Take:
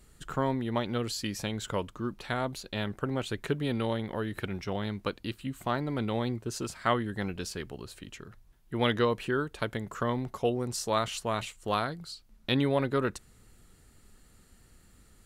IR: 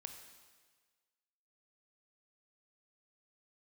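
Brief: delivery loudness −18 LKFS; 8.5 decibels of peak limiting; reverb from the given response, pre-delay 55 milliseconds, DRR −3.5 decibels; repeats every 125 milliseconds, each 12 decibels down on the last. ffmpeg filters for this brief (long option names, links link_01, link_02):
-filter_complex "[0:a]alimiter=limit=-20.5dB:level=0:latency=1,aecho=1:1:125|250|375:0.251|0.0628|0.0157,asplit=2[link_01][link_02];[1:a]atrim=start_sample=2205,adelay=55[link_03];[link_02][link_03]afir=irnorm=-1:irlink=0,volume=8dB[link_04];[link_01][link_04]amix=inputs=2:normalize=0,volume=10.5dB"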